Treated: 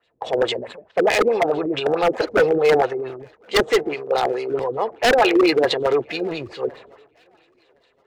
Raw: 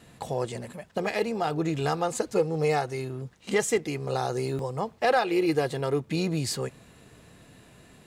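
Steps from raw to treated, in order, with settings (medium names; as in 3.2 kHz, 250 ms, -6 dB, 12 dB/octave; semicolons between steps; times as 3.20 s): LFO low-pass sine 4.6 Hz 280–4000 Hz; resonant low shelf 300 Hz -13.5 dB, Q 1.5; transient shaper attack 0 dB, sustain +7 dB; 3.94–4.50 s: peaking EQ 70 Hz -11.5 dB 1.8 oct; wavefolder -16.5 dBFS; on a send: thinning echo 1064 ms, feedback 61%, high-pass 300 Hz, level -21 dB; on the sum: three bands expanded up and down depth 70%; trim +6.5 dB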